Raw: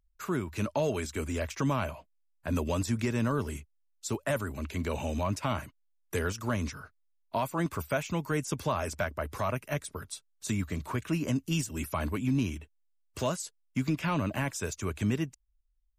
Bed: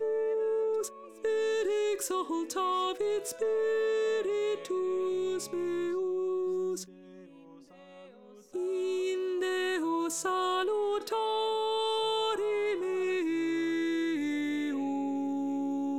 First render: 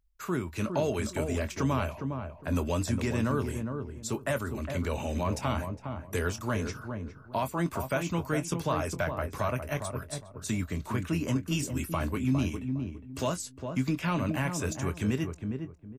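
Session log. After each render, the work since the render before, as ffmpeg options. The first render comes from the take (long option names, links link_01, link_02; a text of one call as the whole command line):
ffmpeg -i in.wav -filter_complex "[0:a]asplit=2[link_01][link_02];[link_02]adelay=23,volume=-12dB[link_03];[link_01][link_03]amix=inputs=2:normalize=0,asplit=2[link_04][link_05];[link_05]adelay=409,lowpass=frequency=860:poles=1,volume=-5dB,asplit=2[link_06][link_07];[link_07]adelay=409,lowpass=frequency=860:poles=1,volume=0.27,asplit=2[link_08][link_09];[link_09]adelay=409,lowpass=frequency=860:poles=1,volume=0.27,asplit=2[link_10][link_11];[link_11]adelay=409,lowpass=frequency=860:poles=1,volume=0.27[link_12];[link_04][link_06][link_08][link_10][link_12]amix=inputs=5:normalize=0" out.wav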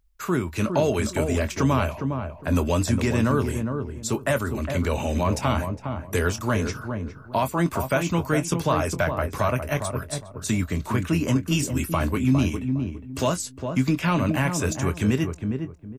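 ffmpeg -i in.wav -af "volume=7dB" out.wav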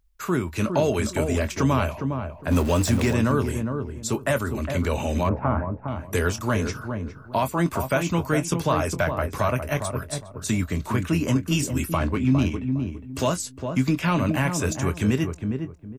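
ffmpeg -i in.wav -filter_complex "[0:a]asettb=1/sr,asplit=3[link_01][link_02][link_03];[link_01]atrim=end=2.514[link_04];[link_02]atrim=start=2.51:end=3.13,asetpts=PTS-STARTPTS,afade=type=in:duration=0.004:curve=qsin,afade=type=out:start_time=0.616:duration=0.004:curve=qsin,aeval=exprs='val(0)+0.5*0.0355*sgn(val(0))':channel_layout=same[link_05];[link_03]atrim=start=3.126[link_06];[link_04][link_05]acrossfade=duration=0.004:curve1=hsin:curve2=qsin[link_07];[link_07][link_06]acrossfade=duration=0.004:curve1=qsin:curve2=hsin,asettb=1/sr,asplit=3[link_08][link_09][link_10];[link_08]atrim=end=5.294[link_11];[link_09]atrim=start=5.29:end=5.88,asetpts=PTS-STARTPTS,afade=type=in:duration=0.004:curve=qsin,afade=type=out:start_time=0.586:duration=0.004:curve=qsin,lowpass=frequency=1600:width=0.5412,lowpass=frequency=1600:width=1.3066[link_12];[link_10]atrim=start=5.876[link_13];[link_11][link_12]acrossfade=duration=0.004:curve1=hsin:curve2=qsin[link_14];[link_14][link_13]acrossfade=duration=0.004:curve1=qsin:curve2=hsin,asettb=1/sr,asplit=3[link_15][link_16][link_17];[link_15]atrim=end=11.974[link_18];[link_16]atrim=start=11.97:end=12.72,asetpts=PTS-STARTPTS,afade=type=in:duration=0.004:curve=qsin,afade=type=out:start_time=0.746:duration=0.004:curve=qsin,adynamicsmooth=sensitivity=4.5:basefreq=3900[link_19];[link_17]atrim=start=12.716[link_20];[link_18][link_19]acrossfade=duration=0.004:curve1=hsin:curve2=qsin[link_21];[link_21][link_20]acrossfade=duration=0.004:curve1=qsin:curve2=hsin" out.wav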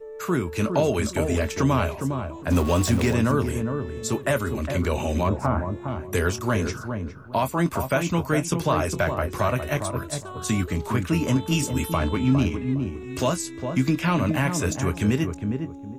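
ffmpeg -i in.wav -i bed.wav -filter_complex "[1:a]volume=-8.5dB[link_01];[0:a][link_01]amix=inputs=2:normalize=0" out.wav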